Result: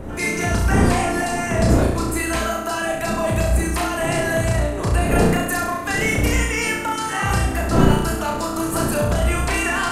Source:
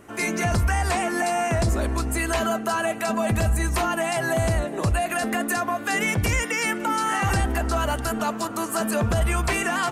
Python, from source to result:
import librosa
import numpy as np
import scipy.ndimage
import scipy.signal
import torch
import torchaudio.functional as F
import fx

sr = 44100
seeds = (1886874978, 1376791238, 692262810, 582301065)

y = fx.dmg_wind(x, sr, seeds[0], corner_hz=310.0, level_db=-27.0)
y = fx.room_flutter(y, sr, wall_m=5.8, rt60_s=0.69)